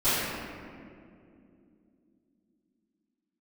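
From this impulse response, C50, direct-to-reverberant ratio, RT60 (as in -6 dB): -4.0 dB, -21.0 dB, 2.5 s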